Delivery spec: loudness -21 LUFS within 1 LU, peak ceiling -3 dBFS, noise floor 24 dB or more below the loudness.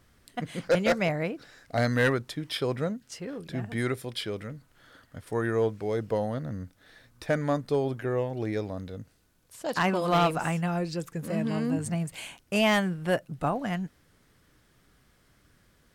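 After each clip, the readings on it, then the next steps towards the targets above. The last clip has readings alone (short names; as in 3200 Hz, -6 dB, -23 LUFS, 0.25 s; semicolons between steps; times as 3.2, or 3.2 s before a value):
clipped 0.3%; flat tops at -17.0 dBFS; loudness -29.0 LUFS; peak -17.0 dBFS; loudness target -21.0 LUFS
-> clip repair -17 dBFS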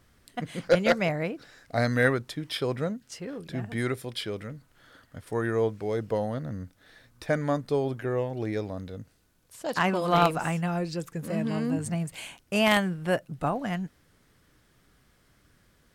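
clipped 0.0%; loudness -28.5 LUFS; peak -8.0 dBFS; loudness target -21.0 LUFS
-> gain +7.5 dB; limiter -3 dBFS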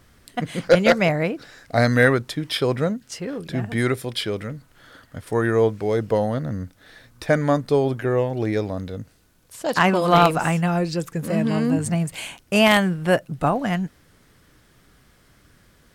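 loudness -21.5 LUFS; peak -3.0 dBFS; noise floor -57 dBFS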